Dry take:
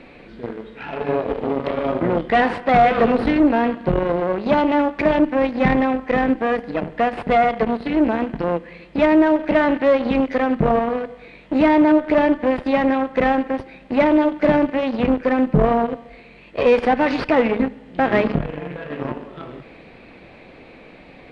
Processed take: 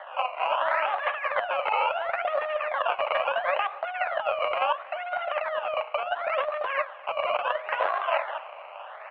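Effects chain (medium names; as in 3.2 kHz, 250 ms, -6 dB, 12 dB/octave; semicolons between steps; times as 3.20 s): local Wiener filter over 25 samples; decimation with a swept rate 40×, swing 100% 0.31 Hz; Chebyshev band-pass 250–1200 Hz, order 4; compressor with a negative ratio -28 dBFS, ratio -1; speed mistake 33 rpm record played at 78 rpm; on a send: feedback delay 247 ms, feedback 58%, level -22 dB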